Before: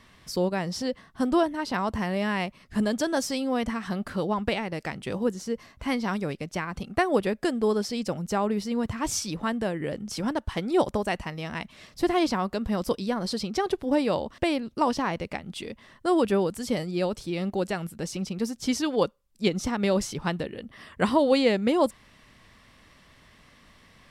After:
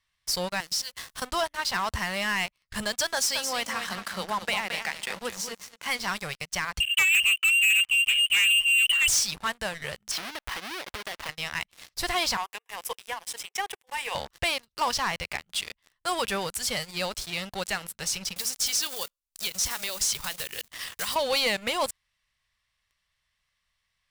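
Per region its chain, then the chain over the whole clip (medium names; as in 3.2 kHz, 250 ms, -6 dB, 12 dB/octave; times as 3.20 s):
0.60–1.22 s: companding laws mixed up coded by mu + treble shelf 3.2 kHz +9 dB + compression, threshold -35 dBFS
3.13–5.99 s: Chebyshev high-pass 170 Hz, order 8 + feedback delay 220 ms, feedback 26%, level -8 dB
6.80–9.08 s: tilt EQ -2 dB/octave + frequency inversion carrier 3 kHz
10.11–11.29 s: square wave that keeps the level + tone controls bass -14 dB, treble -12 dB + compression 16:1, threshold -31 dBFS
12.37–14.15 s: steep high-pass 420 Hz 48 dB/octave + expander -47 dBFS + static phaser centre 900 Hz, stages 8
18.36–21.16 s: block-companded coder 5-bit + treble shelf 2.7 kHz +10 dB + compression 4:1, threshold -31 dBFS
whole clip: amplifier tone stack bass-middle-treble 10-0-10; waveshaping leveller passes 5; trim -6.5 dB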